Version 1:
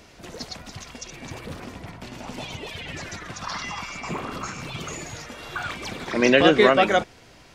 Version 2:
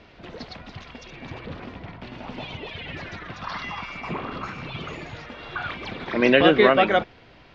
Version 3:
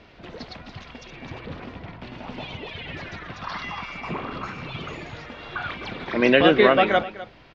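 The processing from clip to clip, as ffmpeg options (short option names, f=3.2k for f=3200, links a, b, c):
-af "lowpass=f=3.9k:w=0.5412,lowpass=f=3.9k:w=1.3066"
-af "aecho=1:1:254:0.15"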